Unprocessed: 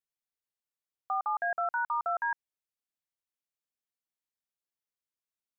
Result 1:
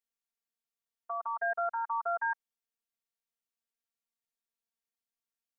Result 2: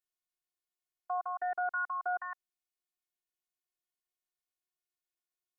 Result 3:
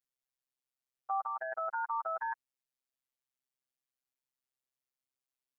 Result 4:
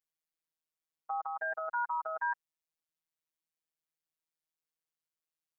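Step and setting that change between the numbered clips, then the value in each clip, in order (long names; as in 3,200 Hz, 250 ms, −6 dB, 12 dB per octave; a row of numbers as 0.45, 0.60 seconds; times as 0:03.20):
phases set to zero, frequency: 230, 360, 130, 160 Hertz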